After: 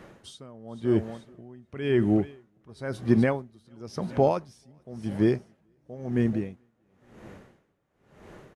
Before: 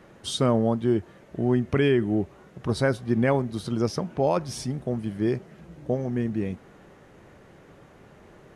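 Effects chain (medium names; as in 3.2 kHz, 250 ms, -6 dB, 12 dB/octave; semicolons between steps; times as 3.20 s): feedback delay 435 ms, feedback 38%, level -18 dB; logarithmic tremolo 0.96 Hz, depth 29 dB; trim +3.5 dB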